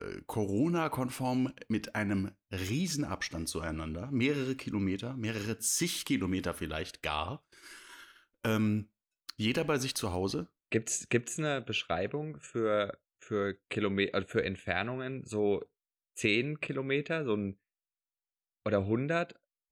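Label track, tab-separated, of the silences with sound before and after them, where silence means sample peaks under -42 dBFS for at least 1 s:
17.510000	18.660000	silence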